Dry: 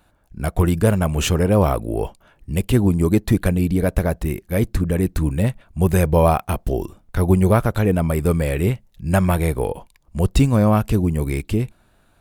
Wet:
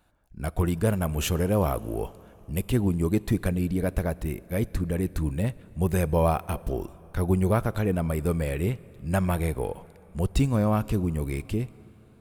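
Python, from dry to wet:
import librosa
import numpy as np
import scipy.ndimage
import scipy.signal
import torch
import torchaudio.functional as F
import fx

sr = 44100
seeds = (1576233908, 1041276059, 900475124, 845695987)

y = fx.peak_eq(x, sr, hz=12000.0, db=9.5, octaves=0.33, at=(0.92, 2.63))
y = fx.rev_plate(y, sr, seeds[0], rt60_s=3.9, hf_ratio=0.75, predelay_ms=0, drr_db=20.0)
y = y * librosa.db_to_amplitude(-7.5)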